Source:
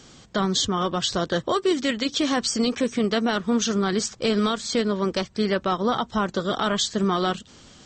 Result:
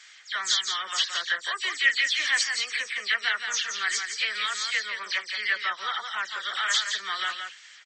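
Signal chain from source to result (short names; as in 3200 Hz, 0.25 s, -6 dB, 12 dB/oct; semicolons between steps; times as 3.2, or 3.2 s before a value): spectral delay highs early, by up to 0.107 s; resonant high-pass 1900 Hz, resonance Q 4.9; echo 0.17 s -6.5 dB; gain -2 dB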